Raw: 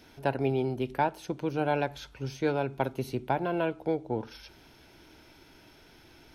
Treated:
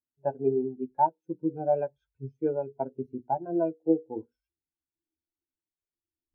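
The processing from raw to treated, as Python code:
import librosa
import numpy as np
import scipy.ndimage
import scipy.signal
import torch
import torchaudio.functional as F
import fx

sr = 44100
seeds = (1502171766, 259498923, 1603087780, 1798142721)

y = fx.rider(x, sr, range_db=4, speed_s=0.5)
y = fx.peak_eq(y, sr, hz=4100.0, db=-8.0, octaves=0.49)
y = fx.hum_notches(y, sr, base_hz=60, count=9)
y = fx.doubler(y, sr, ms=12.0, db=-10.0)
y = fx.spectral_expand(y, sr, expansion=2.5)
y = y * 10.0 ** (2.0 / 20.0)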